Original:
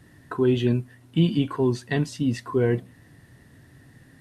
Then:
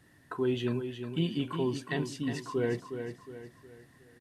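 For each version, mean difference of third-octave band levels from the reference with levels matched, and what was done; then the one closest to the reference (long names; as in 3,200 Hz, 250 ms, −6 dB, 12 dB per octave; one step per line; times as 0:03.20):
6.0 dB: low-shelf EQ 300 Hz −7 dB
on a send: repeating echo 362 ms, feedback 41%, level −8 dB
on the sum: level −5.5 dB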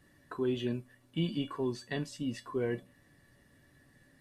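2.5 dB: parametric band 110 Hz −6 dB 1 octave
tuned comb filter 570 Hz, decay 0.17 s, harmonics all, mix 80%
level +2.5 dB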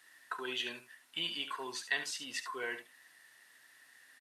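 13.5 dB: high-pass filter 1,400 Hz 12 dB per octave
on a send: single-tap delay 71 ms −10.5 dB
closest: second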